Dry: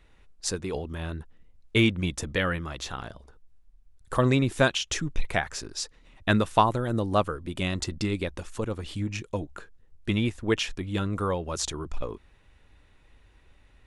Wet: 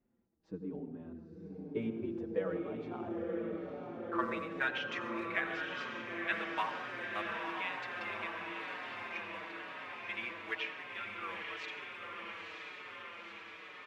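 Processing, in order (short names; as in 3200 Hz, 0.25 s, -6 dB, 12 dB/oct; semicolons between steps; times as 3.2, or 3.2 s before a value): LPF 3100 Hz 12 dB/oct; low shelf 180 Hz -8 dB; companded quantiser 6-bit; band-pass sweep 230 Hz -> 2100 Hz, 1.21–4.85; diffused feedback echo 0.961 s, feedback 71%, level -3.5 dB; on a send at -8.5 dB: reverb, pre-delay 76 ms; on the sum: endless flanger 5.2 ms -1 Hz; gain +1 dB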